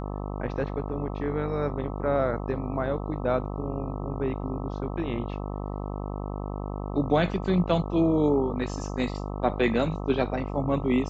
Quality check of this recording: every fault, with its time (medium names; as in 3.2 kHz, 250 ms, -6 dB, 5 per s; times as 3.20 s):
buzz 50 Hz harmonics 26 -33 dBFS